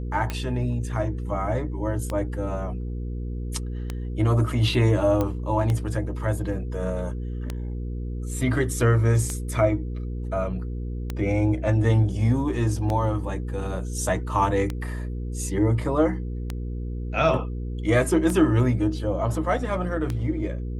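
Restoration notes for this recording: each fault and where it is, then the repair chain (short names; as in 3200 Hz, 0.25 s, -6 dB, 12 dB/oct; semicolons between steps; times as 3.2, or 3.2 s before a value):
hum 60 Hz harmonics 8 -30 dBFS
tick 33 1/3 rpm -14 dBFS
5.21 pop -13 dBFS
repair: de-click; de-hum 60 Hz, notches 8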